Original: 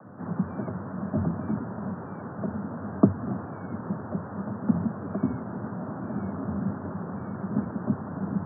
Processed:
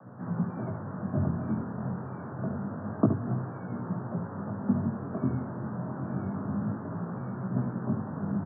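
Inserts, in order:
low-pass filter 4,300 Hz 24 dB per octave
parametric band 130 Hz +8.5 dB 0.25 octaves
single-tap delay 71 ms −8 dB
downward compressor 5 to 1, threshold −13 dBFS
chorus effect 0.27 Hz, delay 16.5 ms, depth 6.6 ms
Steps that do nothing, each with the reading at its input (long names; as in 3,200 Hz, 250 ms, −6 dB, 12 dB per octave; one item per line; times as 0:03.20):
low-pass filter 4,300 Hz: nothing at its input above 1,400 Hz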